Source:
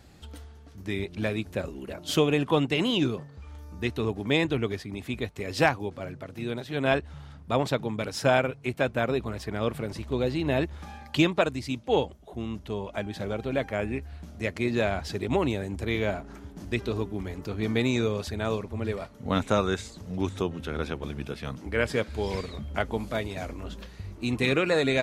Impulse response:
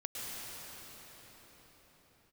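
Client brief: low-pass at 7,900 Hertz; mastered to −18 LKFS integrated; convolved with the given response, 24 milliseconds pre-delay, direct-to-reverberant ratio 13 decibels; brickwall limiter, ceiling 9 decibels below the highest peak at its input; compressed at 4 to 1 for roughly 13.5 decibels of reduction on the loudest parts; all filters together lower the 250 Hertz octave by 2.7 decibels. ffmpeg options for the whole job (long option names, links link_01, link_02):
-filter_complex "[0:a]lowpass=7900,equalizer=frequency=250:width_type=o:gain=-3.5,acompressor=threshold=-35dB:ratio=4,alimiter=level_in=2.5dB:limit=-24dB:level=0:latency=1,volume=-2.5dB,asplit=2[link_01][link_02];[1:a]atrim=start_sample=2205,adelay=24[link_03];[link_02][link_03]afir=irnorm=-1:irlink=0,volume=-15.5dB[link_04];[link_01][link_04]amix=inputs=2:normalize=0,volume=22dB"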